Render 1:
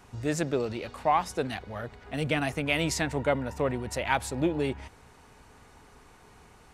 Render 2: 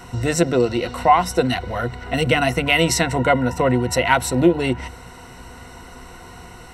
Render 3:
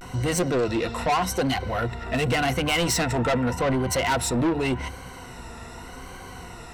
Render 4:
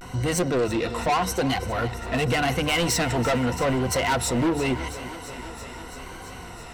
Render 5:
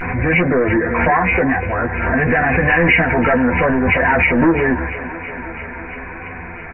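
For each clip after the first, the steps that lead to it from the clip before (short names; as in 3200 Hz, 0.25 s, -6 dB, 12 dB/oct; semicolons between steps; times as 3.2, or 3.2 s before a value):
ripple EQ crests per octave 2, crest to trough 12 dB; in parallel at 0 dB: compressor, threshold -34 dBFS, peak gain reduction 16 dB; on the sum: gain +7 dB
vibrato 0.85 Hz 89 cents; soft clip -19 dBFS, distortion -7 dB
thinning echo 0.334 s, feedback 81%, high-pass 220 Hz, level -15 dB
nonlinear frequency compression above 1500 Hz 4:1; doubler 12 ms -3.5 dB; backwards sustainer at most 34 dB/s; gain +5.5 dB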